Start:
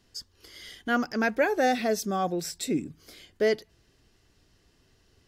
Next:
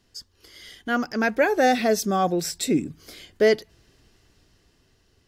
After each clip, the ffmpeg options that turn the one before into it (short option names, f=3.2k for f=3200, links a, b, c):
-af "dynaudnorm=f=290:g=9:m=6dB"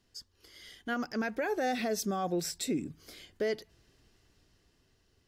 -af "alimiter=limit=-16.5dB:level=0:latency=1:release=76,volume=-7dB"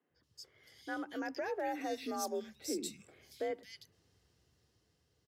-filter_complex "[0:a]afreqshift=51,acrossover=split=190|2400[a][b][c];[a]adelay=90[d];[c]adelay=230[e];[d][b][e]amix=inputs=3:normalize=0,volume=-5.5dB"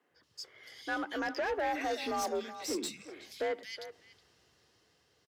-filter_complex "[0:a]asplit=2[a][b];[b]adelay=370,highpass=300,lowpass=3.4k,asoftclip=type=hard:threshold=-34.5dB,volume=-15dB[c];[a][c]amix=inputs=2:normalize=0,asplit=2[d][e];[e]highpass=f=720:p=1,volume=17dB,asoftclip=type=tanh:threshold=-24.5dB[f];[d][f]amix=inputs=2:normalize=0,lowpass=f=4.1k:p=1,volume=-6dB"